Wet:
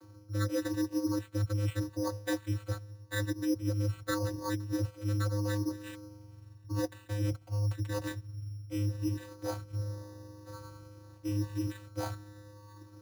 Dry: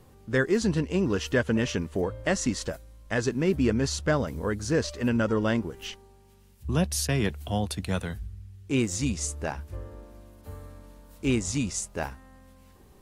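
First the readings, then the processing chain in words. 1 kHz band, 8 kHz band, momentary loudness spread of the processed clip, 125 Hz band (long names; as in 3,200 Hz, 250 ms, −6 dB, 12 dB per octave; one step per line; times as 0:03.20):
−7.5 dB, −13.5 dB, 17 LU, −2.0 dB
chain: rippled gain that drifts along the octave scale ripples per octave 1.2, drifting +0.85 Hz, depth 20 dB
tilt shelving filter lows −6 dB
in parallel at −10 dB: sine wavefolder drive 5 dB, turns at −6 dBFS
on the sum: mains hum 60 Hz, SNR 34 dB
channel vocoder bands 16, square 103 Hz
low-pass filter 1,700 Hz 6 dB per octave
bad sample-rate conversion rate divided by 8×, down filtered, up hold
reversed playback
downward compressor 4 to 1, threshold −28 dBFS, peak gain reduction 14 dB
reversed playback
low-shelf EQ 170 Hz −3.5 dB
notch comb filter 240 Hz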